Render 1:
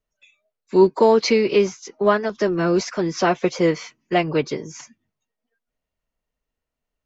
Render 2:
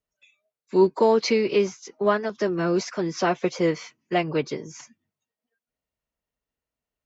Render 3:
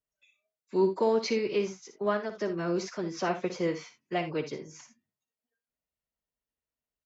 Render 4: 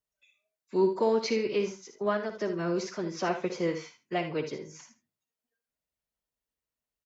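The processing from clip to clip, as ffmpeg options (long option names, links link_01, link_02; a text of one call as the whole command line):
ffmpeg -i in.wav -af "highpass=49,volume=-4dB" out.wav
ffmpeg -i in.wav -af "aecho=1:1:58|79:0.299|0.158,volume=-7.5dB" out.wav
ffmpeg -i in.wav -af "aecho=1:1:77:0.237" out.wav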